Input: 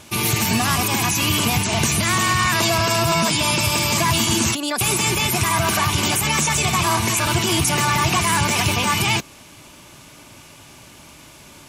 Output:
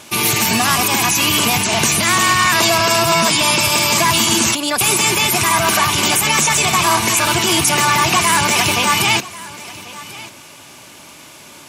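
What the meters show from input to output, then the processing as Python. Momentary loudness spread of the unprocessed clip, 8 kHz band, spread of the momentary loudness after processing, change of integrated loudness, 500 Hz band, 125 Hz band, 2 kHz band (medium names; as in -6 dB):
2 LU, +5.5 dB, 6 LU, +5.0 dB, +4.5 dB, -2.5 dB, +5.5 dB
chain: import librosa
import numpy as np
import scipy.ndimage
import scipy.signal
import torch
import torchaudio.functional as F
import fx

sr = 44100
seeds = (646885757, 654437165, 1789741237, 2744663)

p1 = fx.highpass(x, sr, hz=280.0, slope=6)
p2 = p1 + fx.echo_single(p1, sr, ms=1090, db=-18.5, dry=0)
y = F.gain(torch.from_numpy(p2), 5.5).numpy()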